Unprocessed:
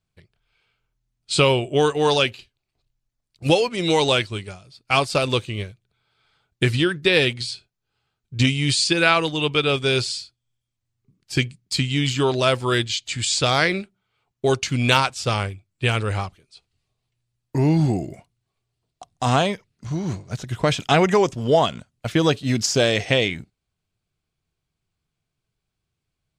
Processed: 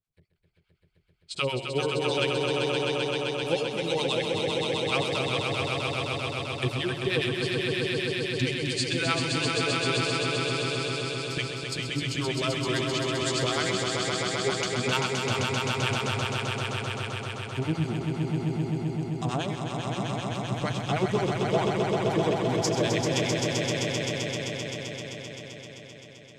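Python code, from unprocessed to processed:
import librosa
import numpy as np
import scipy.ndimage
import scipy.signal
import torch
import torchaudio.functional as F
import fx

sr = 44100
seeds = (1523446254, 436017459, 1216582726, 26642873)

p1 = fx.harmonic_tremolo(x, sr, hz=9.6, depth_pct=100, crossover_hz=780.0)
p2 = p1 + fx.echo_swell(p1, sr, ms=130, loudest=5, wet_db=-4.5, dry=0)
y = F.gain(torch.from_numpy(p2), -7.0).numpy()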